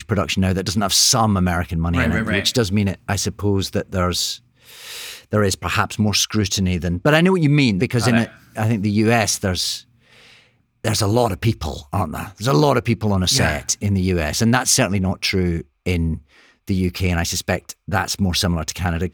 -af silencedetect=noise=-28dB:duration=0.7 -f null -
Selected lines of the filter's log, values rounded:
silence_start: 9.79
silence_end: 10.85 | silence_duration: 1.05